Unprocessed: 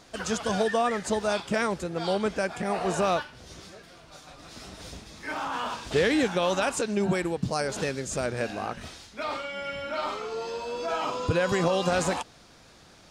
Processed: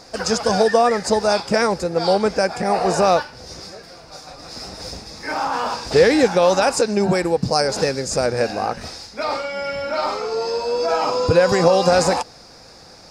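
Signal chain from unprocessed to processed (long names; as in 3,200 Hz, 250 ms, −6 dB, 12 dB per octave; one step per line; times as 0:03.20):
thirty-one-band graphic EQ 500 Hz +7 dB, 800 Hz +6 dB, 3,150 Hz −9 dB, 5,000 Hz +12 dB
level +6.5 dB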